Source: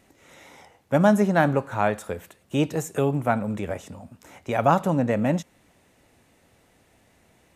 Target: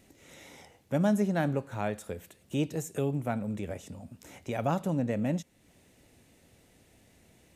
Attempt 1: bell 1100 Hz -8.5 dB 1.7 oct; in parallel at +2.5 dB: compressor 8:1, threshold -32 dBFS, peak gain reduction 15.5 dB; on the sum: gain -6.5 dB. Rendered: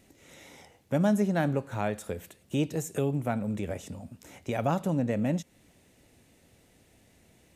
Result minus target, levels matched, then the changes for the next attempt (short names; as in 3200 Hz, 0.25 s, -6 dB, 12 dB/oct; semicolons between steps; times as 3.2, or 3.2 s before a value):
compressor: peak gain reduction -10 dB
change: compressor 8:1, threshold -43.5 dBFS, peak gain reduction 25.5 dB